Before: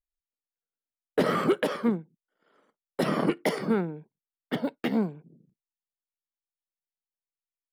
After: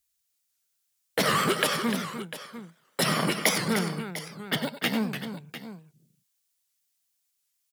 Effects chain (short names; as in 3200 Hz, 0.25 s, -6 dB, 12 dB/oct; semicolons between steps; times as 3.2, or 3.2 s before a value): HPF 80 Hz; low shelf 140 Hz +3.5 dB; in parallel at +2.5 dB: compressor, threshold -34 dBFS, peak gain reduction 15 dB; on the sum: EQ curve 140 Hz 0 dB, 290 Hz -10 dB, 7000 Hz +13 dB; tapped delay 91/96/299/698 ms -17.5/-12/-9.5/-13.5 dB; record warp 78 rpm, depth 160 cents